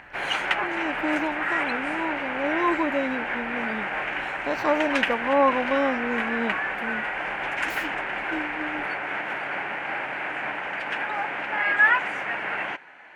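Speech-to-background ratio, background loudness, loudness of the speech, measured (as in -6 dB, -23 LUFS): -2.0 dB, -26.5 LUFS, -28.5 LUFS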